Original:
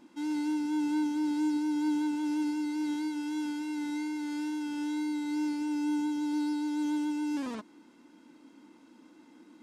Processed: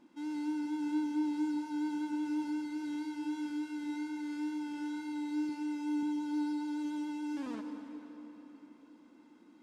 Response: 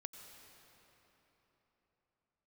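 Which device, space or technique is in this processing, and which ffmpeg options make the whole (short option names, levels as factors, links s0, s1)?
swimming-pool hall: -filter_complex "[1:a]atrim=start_sample=2205[s0];[0:a][s0]afir=irnorm=-1:irlink=0,highshelf=f=4300:g=-5.5,asettb=1/sr,asplit=3[s1][s2][s3];[s1]atrim=end=5.494[s4];[s2]atrim=start=5.49:end=6.03,asetpts=PTS-STARTPTS,afade=t=in:d=0.004:c=qsin,afade=t=out:st=0.536:d=0.004:c=qsin,highpass=120[s5];[s3]atrim=start=6.026[s6];[s4][s5]acrossfade=d=0.004:c1=hsin:c2=qsin[s7];[s7][s6]acrossfade=d=0.004:c1=qsin:c2=hsin"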